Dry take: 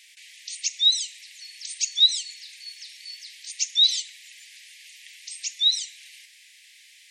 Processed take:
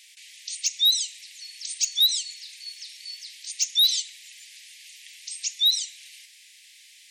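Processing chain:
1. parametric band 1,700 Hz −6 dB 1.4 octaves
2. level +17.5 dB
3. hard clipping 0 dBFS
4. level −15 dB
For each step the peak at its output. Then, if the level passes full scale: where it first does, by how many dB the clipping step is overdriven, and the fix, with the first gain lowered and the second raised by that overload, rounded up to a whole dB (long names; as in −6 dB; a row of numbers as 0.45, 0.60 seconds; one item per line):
−9.0, +8.5, 0.0, −15.0 dBFS
step 2, 8.5 dB
step 2 +8.5 dB, step 4 −6 dB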